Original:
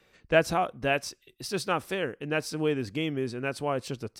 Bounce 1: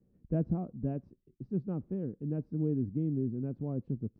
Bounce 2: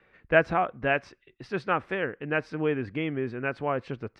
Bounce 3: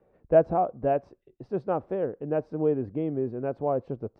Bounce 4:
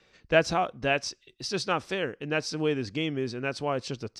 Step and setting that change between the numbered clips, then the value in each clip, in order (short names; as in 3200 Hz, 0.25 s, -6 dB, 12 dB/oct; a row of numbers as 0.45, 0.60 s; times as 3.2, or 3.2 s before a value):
synth low-pass, frequency: 220, 1900, 670, 5600 Hz